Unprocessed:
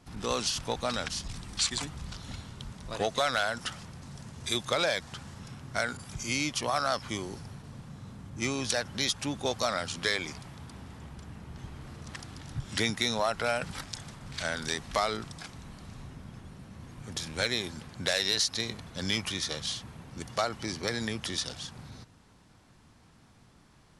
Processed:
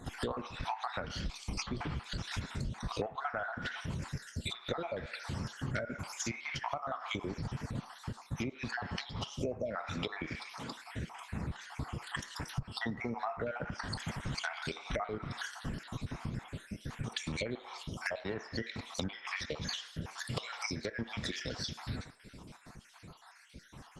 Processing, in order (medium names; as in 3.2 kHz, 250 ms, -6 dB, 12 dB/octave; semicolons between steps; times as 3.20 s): random holes in the spectrogram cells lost 56%; 10.39–10.92 s: high-pass 260 Hz 12 dB/octave; on a send at -8 dB: tilt EQ +4.5 dB/octave + reverberation RT60 0.60 s, pre-delay 3 ms; 20.94–21.74 s: on the sum: overload inside the chain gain 26.5 dB; low-pass that closes with the level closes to 1.2 kHz, closed at -29.5 dBFS; compression 12:1, threshold -43 dBFS, peak gain reduction 18.5 dB; trim +10.5 dB; Opus 16 kbps 48 kHz